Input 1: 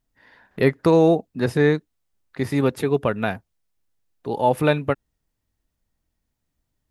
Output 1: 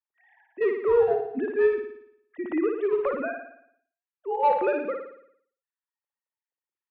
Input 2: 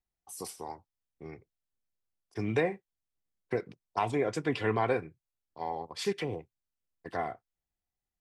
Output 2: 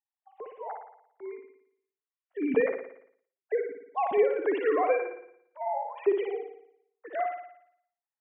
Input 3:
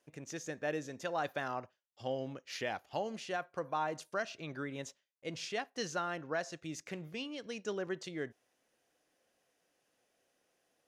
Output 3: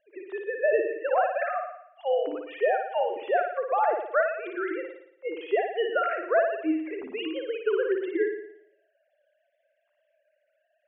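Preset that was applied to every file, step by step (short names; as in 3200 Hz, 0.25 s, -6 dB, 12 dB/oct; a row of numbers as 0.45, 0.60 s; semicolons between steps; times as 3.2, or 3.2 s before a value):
sine-wave speech; in parallel at -9 dB: wavefolder -15.5 dBFS; on the sum: air absorption 330 m; flutter echo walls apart 9.8 m, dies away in 0.69 s; ending taper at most 120 dB/s; normalise peaks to -12 dBFS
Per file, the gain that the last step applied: -6.5, +2.5, +10.0 dB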